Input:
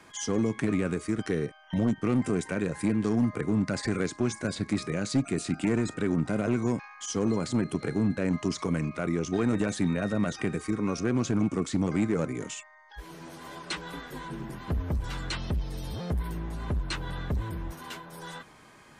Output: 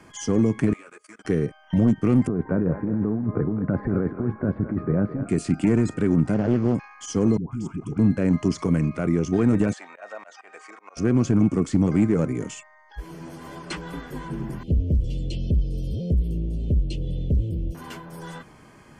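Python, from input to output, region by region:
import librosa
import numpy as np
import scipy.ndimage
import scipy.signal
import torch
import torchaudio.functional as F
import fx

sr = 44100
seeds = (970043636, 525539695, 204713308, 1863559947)

y = fx.chain(x, sr, fx.highpass(hz=960.0, slope=12),
    fx.level_steps(step_db=22),
    fx.ensemble(), at=(0.73, 1.25))
y = fx.chain(y, sr, fx.lowpass(hz=1400.0, slope=24),
    fx.over_compress(threshold_db=-30.0, ratio=-1.0),
    fx.echo_thinned(ms=214, feedback_pct=44, hz=600.0, wet_db=-7.5), at=(2.27, 5.29))
y = fx.chain(y, sr, fx.cvsd(bps=32000),
    fx.high_shelf(hz=3600.0, db=-9.5),
    fx.doppler_dist(depth_ms=0.27), at=(6.34, 6.75))
y = fx.chain(y, sr, fx.fixed_phaser(hz=2800.0, stages=8),
    fx.dispersion(late='highs', ms=148.0, hz=650.0),
    fx.level_steps(step_db=12), at=(7.37, 7.99))
y = fx.chain(y, sr, fx.ellip_bandpass(low_hz=680.0, high_hz=7800.0, order=3, stop_db=70),
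    fx.high_shelf(hz=4500.0, db=-8.5),
    fx.auto_swell(attack_ms=152.0), at=(9.73, 10.97))
y = fx.chain(y, sr, fx.ellip_bandstop(low_hz=550.0, high_hz=2900.0, order=3, stop_db=60),
    fx.high_shelf(hz=6100.0, db=-11.0), at=(14.63, 17.75))
y = fx.low_shelf(y, sr, hz=480.0, db=9.0)
y = fx.notch(y, sr, hz=3800.0, q=6.5)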